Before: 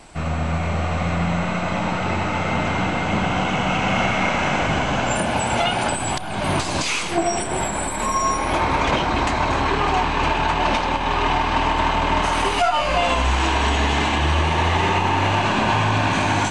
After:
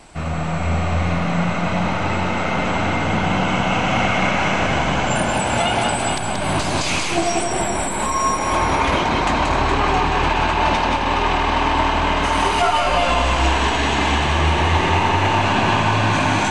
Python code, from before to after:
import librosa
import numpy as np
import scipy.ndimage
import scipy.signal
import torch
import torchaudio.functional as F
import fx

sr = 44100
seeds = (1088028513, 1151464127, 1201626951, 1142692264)

y = fx.echo_multitap(x, sr, ms=(180, 419), db=(-4.0, -8.0))